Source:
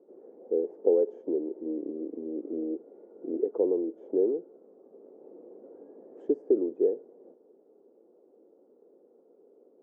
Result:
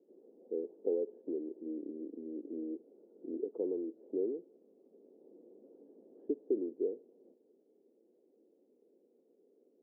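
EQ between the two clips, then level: band-pass filter 170 Hz, Q 1.3; peaking EQ 150 Hz -9.5 dB 0.83 oct; 0.0 dB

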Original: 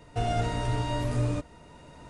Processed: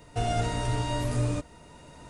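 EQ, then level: treble shelf 6 kHz +8.5 dB; 0.0 dB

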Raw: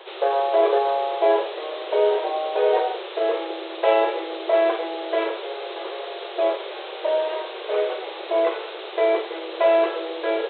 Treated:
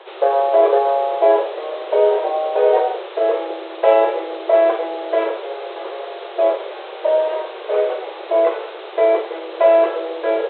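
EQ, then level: high-pass 400 Hz 6 dB/octave; low-pass 1.5 kHz 6 dB/octave; dynamic bell 550 Hz, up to +4 dB, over -35 dBFS, Q 2; +5.0 dB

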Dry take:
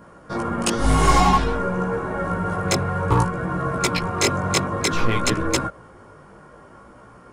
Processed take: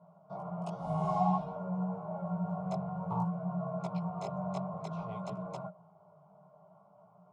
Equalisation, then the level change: two resonant band-passes 330 Hz, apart 1.8 oct; bass shelf 300 Hz -8 dB; static phaser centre 350 Hz, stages 8; +2.5 dB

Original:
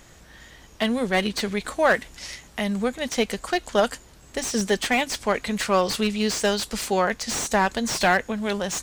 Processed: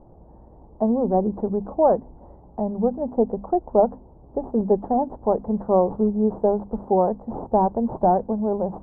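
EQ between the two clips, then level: elliptic low-pass 890 Hz, stop band 60 dB; hum notches 50/100/150/200/250 Hz; +4.5 dB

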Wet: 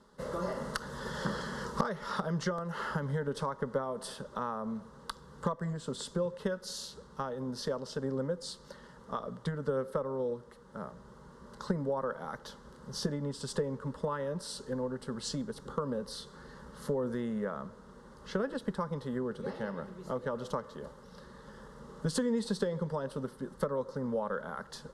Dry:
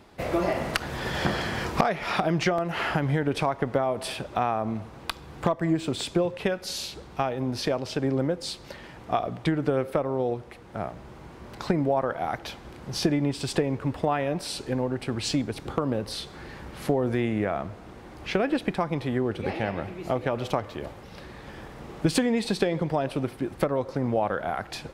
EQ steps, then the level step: low-pass 11 kHz 24 dB/octave; static phaser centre 480 Hz, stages 8; -5.0 dB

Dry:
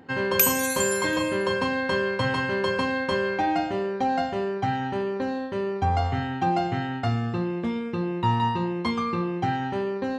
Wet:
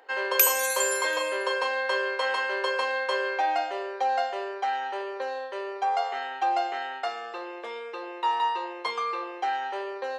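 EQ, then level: steep high-pass 450 Hz 36 dB/octave; 0.0 dB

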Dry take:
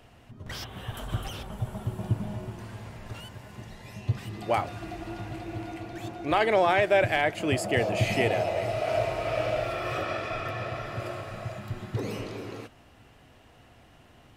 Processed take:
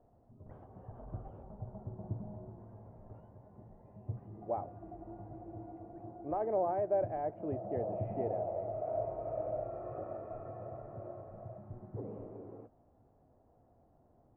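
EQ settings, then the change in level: four-pole ladder low-pass 910 Hz, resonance 30%; distance through air 94 m; hum notches 60/120 Hz; -4.5 dB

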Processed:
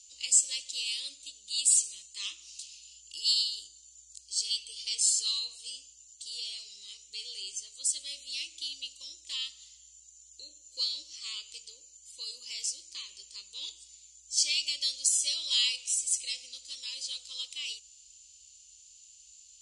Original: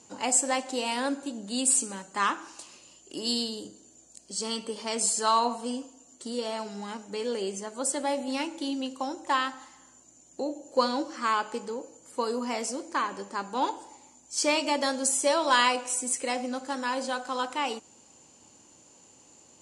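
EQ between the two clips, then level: inverse Chebyshev band-stop 110–1700 Hz, stop band 40 dB; distance through air 59 m; +7.0 dB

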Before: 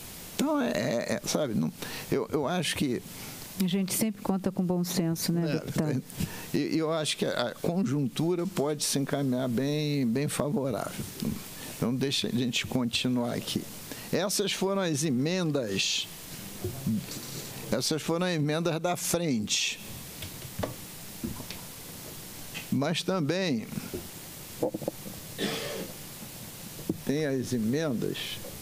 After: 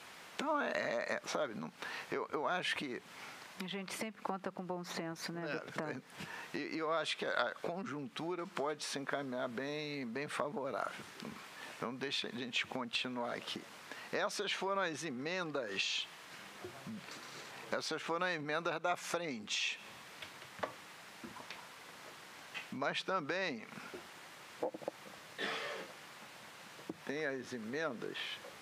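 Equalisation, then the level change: band-pass filter 1.4 kHz, Q 1.1; 0.0 dB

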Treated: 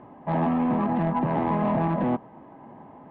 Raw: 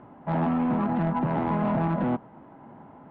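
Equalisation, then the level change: Butterworth band-stop 1.4 kHz, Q 6.8; distance through air 260 m; tone controls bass -4 dB, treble +9 dB; +3.5 dB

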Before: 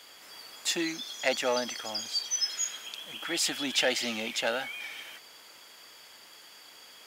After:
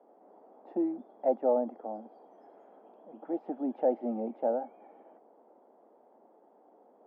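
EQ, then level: Chebyshev band-pass 220–780 Hz, order 3; +4.0 dB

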